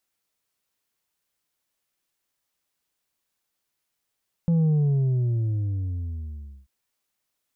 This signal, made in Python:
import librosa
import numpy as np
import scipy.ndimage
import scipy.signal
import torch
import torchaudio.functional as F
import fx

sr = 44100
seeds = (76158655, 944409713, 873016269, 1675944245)

y = fx.sub_drop(sr, level_db=-18, start_hz=170.0, length_s=2.19, drive_db=4, fade_s=2.02, end_hz=65.0)